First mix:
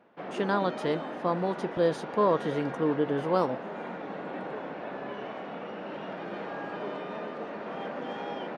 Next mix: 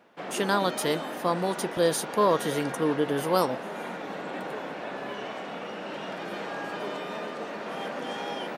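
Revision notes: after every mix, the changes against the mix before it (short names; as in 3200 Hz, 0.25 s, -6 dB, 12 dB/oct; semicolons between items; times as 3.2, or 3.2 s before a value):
master: remove tape spacing loss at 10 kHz 26 dB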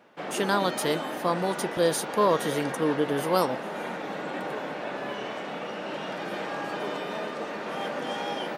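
reverb: on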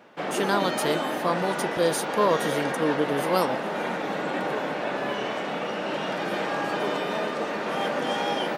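background +5.0 dB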